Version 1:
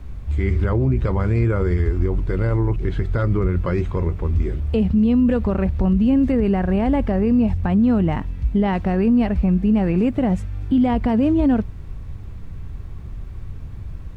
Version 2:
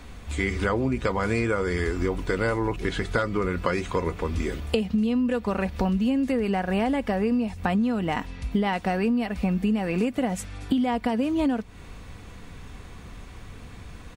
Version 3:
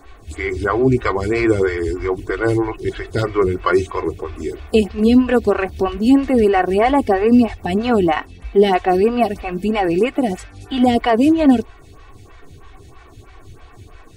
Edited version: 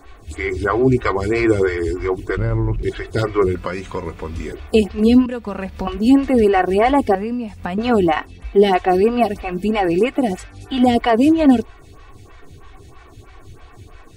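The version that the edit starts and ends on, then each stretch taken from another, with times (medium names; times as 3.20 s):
3
2.37–2.83 s: from 1
3.55–4.52 s: from 2
5.26–5.87 s: from 2
7.15–7.78 s: from 2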